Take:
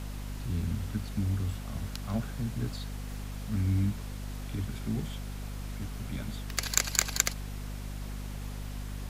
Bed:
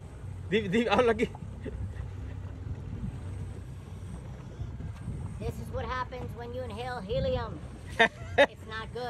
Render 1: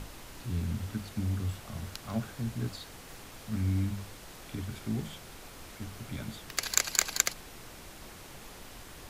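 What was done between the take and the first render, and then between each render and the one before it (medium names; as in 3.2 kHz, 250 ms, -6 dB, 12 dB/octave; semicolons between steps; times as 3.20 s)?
hum notches 50/100/150/200/250 Hz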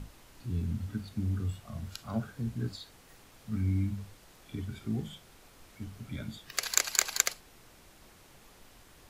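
noise print and reduce 9 dB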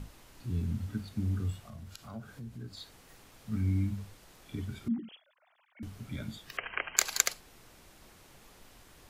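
1.62–2.77 s: compression 2:1, threshold -47 dBFS; 4.88–5.83 s: formants replaced by sine waves; 6.57–6.97 s: brick-wall FIR low-pass 3.2 kHz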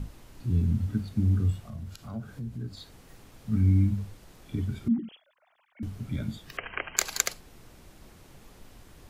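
bass shelf 440 Hz +8.5 dB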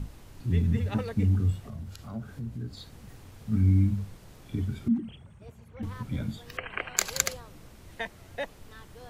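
add bed -13 dB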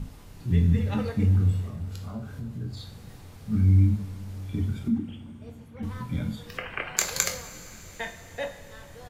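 doubling 23 ms -11 dB; two-slope reverb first 0.41 s, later 4.6 s, from -18 dB, DRR 4 dB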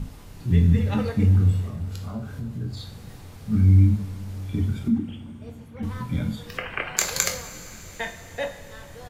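trim +3.5 dB; peak limiter -2 dBFS, peak gain reduction 2 dB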